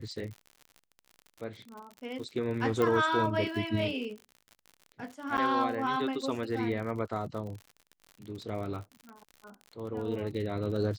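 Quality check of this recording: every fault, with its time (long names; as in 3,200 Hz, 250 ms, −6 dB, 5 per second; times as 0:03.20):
surface crackle 63 per second −39 dBFS
0:02.82: click −17 dBFS
0:05.37–0:05.38: drop-out 9 ms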